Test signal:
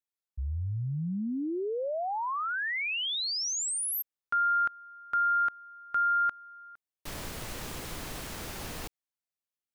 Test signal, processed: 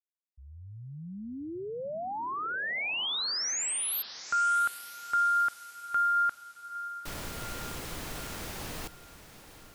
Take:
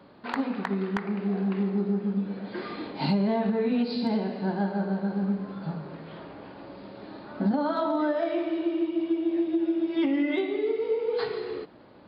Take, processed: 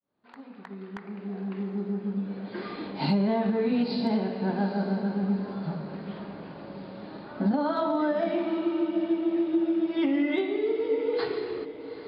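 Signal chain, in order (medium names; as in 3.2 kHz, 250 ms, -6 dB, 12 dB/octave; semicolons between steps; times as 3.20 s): fade-in on the opening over 3.09 s; echo that smears into a reverb 839 ms, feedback 44%, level -13 dB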